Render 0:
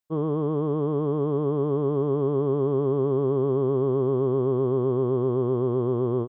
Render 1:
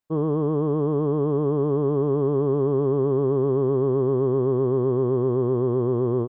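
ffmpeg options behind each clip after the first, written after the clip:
-filter_complex "[0:a]highshelf=f=2.2k:g=-8.5,asplit=2[a][b];[b]alimiter=level_in=2dB:limit=-24dB:level=0:latency=1:release=22,volume=-2dB,volume=-0.5dB[c];[a][c]amix=inputs=2:normalize=0,acontrast=35,volume=-5.5dB"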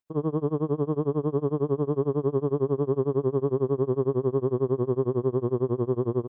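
-af "tremolo=f=11:d=0.95"

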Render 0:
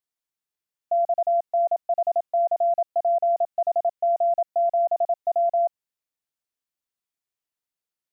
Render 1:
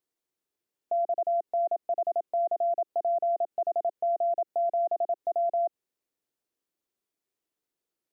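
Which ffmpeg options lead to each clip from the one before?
-af "equalizer=f=360:w=1:g=13,alimiter=limit=-22.5dB:level=0:latency=1:release=76"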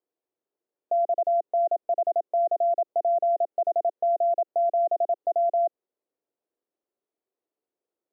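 -af "bandpass=f=510:t=q:w=1.2:csg=0,volume=5.5dB"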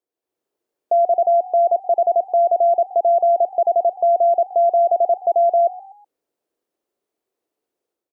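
-filter_complex "[0:a]dynaudnorm=f=110:g=5:m=8dB,asplit=4[a][b][c][d];[b]adelay=124,afreqshift=47,volume=-20dB[e];[c]adelay=248,afreqshift=94,volume=-27.3dB[f];[d]adelay=372,afreqshift=141,volume=-34.7dB[g];[a][e][f][g]amix=inputs=4:normalize=0"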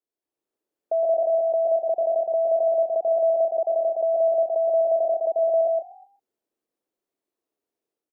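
-af "afreqshift=-27,aecho=1:1:116.6|148.7:0.708|0.282,volume=-7.5dB"

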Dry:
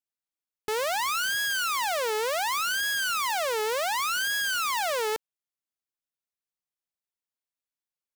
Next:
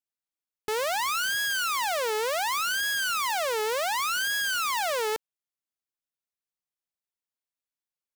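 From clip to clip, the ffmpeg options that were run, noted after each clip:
-af anull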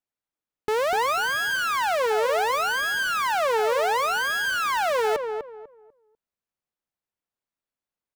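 -filter_complex "[0:a]highshelf=f=2.7k:g=-11.5,asplit=2[a][b];[b]adelay=247,lowpass=f=1.2k:p=1,volume=-5dB,asplit=2[c][d];[d]adelay=247,lowpass=f=1.2k:p=1,volume=0.28,asplit=2[e][f];[f]adelay=247,lowpass=f=1.2k:p=1,volume=0.28,asplit=2[g][h];[h]adelay=247,lowpass=f=1.2k:p=1,volume=0.28[i];[c][e][g][i]amix=inputs=4:normalize=0[j];[a][j]amix=inputs=2:normalize=0,volume=6dB"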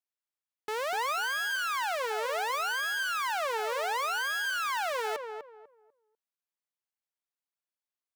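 -af "highpass=f=850:p=1,volume=-5dB"

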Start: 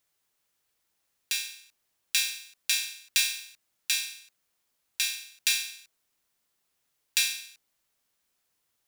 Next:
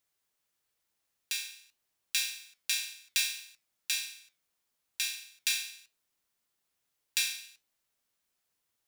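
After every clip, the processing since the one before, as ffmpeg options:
-af "flanger=delay=8.6:depth=2.9:regen=-80:speed=1.7:shape=triangular"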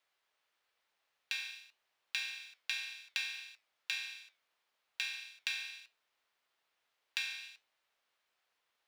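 -filter_complex "[0:a]acrossover=split=2100|6100[a][b][c];[a]acompressor=threshold=-48dB:ratio=4[d];[b]acompressor=threshold=-43dB:ratio=4[e];[c]acompressor=threshold=-47dB:ratio=4[f];[d][e][f]amix=inputs=3:normalize=0,acrossover=split=450 4200:gain=0.158 1 0.126[g][h][i];[g][h][i]amix=inputs=3:normalize=0,volume=6.5dB"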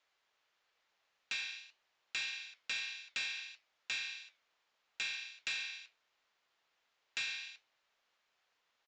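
-af "flanger=delay=3.3:depth=6.1:regen=-72:speed=1.6:shape=triangular,aresample=16000,asoftclip=type=tanh:threshold=-38.5dB,aresample=44100,volume=7dB"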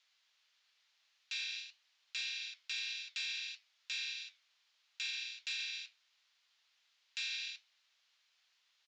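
-af "alimiter=level_in=14dB:limit=-24dB:level=0:latency=1:release=104,volume=-14dB,bandpass=f=4.5k:t=q:w=1.1:csg=0,volume=9dB"

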